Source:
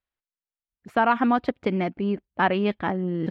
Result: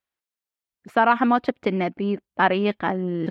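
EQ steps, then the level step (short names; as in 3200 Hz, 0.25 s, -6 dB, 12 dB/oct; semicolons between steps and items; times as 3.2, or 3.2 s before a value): HPF 180 Hz 6 dB/oct; +3.0 dB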